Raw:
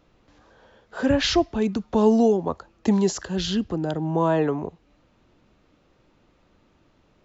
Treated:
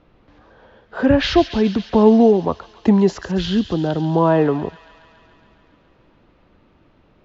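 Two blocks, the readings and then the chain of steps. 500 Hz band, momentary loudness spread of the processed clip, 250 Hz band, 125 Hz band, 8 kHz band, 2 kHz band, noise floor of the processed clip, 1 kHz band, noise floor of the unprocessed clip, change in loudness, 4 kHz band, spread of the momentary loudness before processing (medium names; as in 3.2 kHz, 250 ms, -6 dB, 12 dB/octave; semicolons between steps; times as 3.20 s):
+6.0 dB, 10 LU, +6.0 dB, +6.5 dB, no reading, +5.0 dB, -56 dBFS, +5.5 dB, -62 dBFS, +6.0 dB, +2.0 dB, 9 LU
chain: distance through air 210 m; feedback echo behind a high-pass 139 ms, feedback 76%, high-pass 2.2 kHz, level -9.5 dB; trim +6.5 dB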